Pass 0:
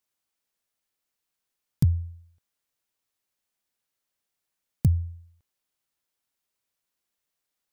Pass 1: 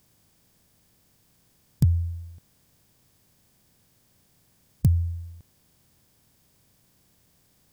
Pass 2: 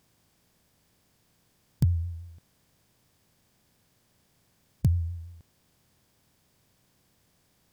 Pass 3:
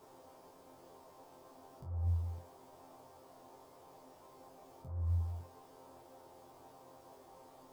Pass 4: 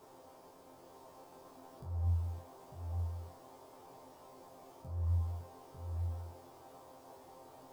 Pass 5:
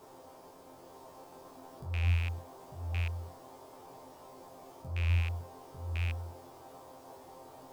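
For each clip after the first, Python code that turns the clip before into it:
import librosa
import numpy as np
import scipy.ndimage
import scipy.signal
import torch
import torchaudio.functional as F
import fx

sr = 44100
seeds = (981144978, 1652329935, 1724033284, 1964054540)

y1 = fx.bin_compress(x, sr, power=0.6)
y2 = fx.high_shelf(y1, sr, hz=5800.0, db=-7.0)
y2 = fx.vibrato(y2, sr, rate_hz=5.9, depth_cents=53.0)
y2 = fx.low_shelf(y2, sr, hz=340.0, db=-4.0)
y3 = fx.over_compress(y2, sr, threshold_db=-34.0, ratio=-1.0)
y3 = fx.dmg_noise_band(y3, sr, seeds[0], low_hz=270.0, high_hz=1000.0, level_db=-53.0)
y3 = fx.resonator_bank(y3, sr, root=41, chord='fifth', decay_s=0.26)
y3 = y3 * 10.0 ** (4.5 / 20.0)
y4 = y3 + 10.0 ** (-5.0 / 20.0) * np.pad(y3, (int(898 * sr / 1000.0), 0))[:len(y3)]
y4 = y4 * 10.0 ** (1.0 / 20.0)
y5 = fx.rattle_buzz(y4, sr, strikes_db=-35.0, level_db=-31.0)
y5 = y5 * 10.0 ** (4.0 / 20.0)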